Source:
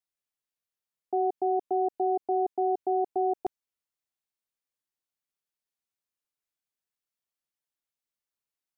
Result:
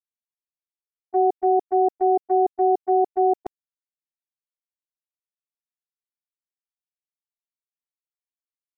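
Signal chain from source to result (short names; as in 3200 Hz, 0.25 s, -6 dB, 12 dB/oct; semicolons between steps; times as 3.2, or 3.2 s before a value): gate -27 dBFS, range -28 dB; gain +8 dB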